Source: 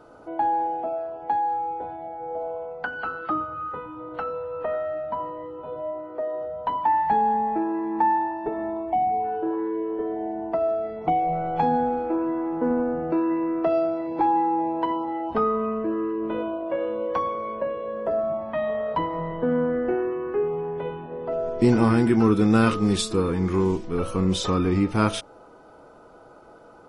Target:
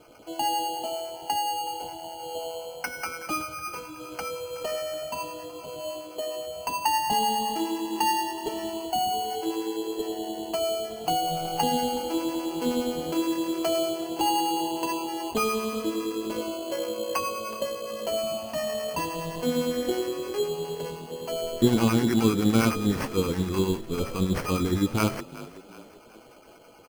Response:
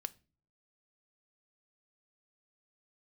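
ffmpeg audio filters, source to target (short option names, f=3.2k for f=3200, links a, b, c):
-filter_complex "[0:a]acrossover=split=700[a][b];[a]aeval=exprs='val(0)*(1-0.7/2+0.7/2*cos(2*PI*9.7*n/s))':c=same[c];[b]aeval=exprs='val(0)*(1-0.7/2-0.7/2*cos(2*PI*9.7*n/s))':c=same[d];[c][d]amix=inputs=2:normalize=0,acrusher=samples=12:mix=1:aa=0.000001,asplit=5[e][f][g][h][i];[f]adelay=372,afreqshift=38,volume=-17.5dB[j];[g]adelay=744,afreqshift=76,volume=-24.2dB[k];[h]adelay=1116,afreqshift=114,volume=-31dB[l];[i]adelay=1488,afreqshift=152,volume=-37.7dB[m];[e][j][k][l][m]amix=inputs=5:normalize=0"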